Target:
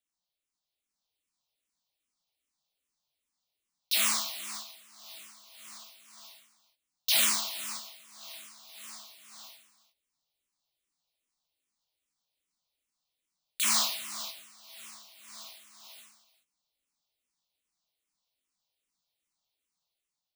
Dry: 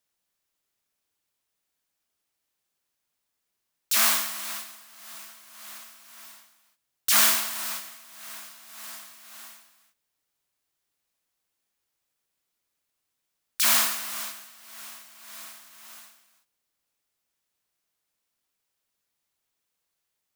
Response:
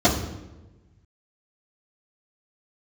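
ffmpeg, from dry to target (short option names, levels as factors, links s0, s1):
-filter_complex "[0:a]equalizer=f=100:t=o:w=0.67:g=-8,equalizer=f=400:t=o:w=0.67:g=-6,equalizer=f=1600:t=o:w=0.67:g=-10,equalizer=f=4000:t=o:w=0.67:g=5,equalizer=f=16000:t=o:w=0.67:g=-10,dynaudnorm=f=660:g=3:m=1.78,asplit=2[s0][s1];[s1]afreqshift=-2.5[s2];[s0][s2]amix=inputs=2:normalize=1,volume=0.596"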